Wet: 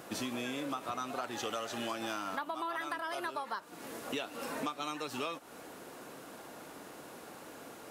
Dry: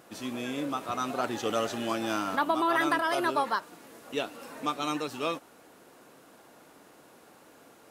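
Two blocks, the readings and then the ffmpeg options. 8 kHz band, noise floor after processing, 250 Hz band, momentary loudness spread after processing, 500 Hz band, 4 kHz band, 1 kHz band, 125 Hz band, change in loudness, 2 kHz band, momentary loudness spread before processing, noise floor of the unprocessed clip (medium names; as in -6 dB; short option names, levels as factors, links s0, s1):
-2.5 dB, -51 dBFS, -8.0 dB, 12 LU, -8.0 dB, -4.5 dB, -8.0 dB, -6.5 dB, -9.0 dB, -7.5 dB, 11 LU, -56 dBFS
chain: -filter_complex "[0:a]acrossover=split=600[s0][s1];[s0]alimiter=level_in=2.66:limit=0.0631:level=0:latency=1:release=189,volume=0.376[s2];[s2][s1]amix=inputs=2:normalize=0,acompressor=threshold=0.01:ratio=12,volume=2"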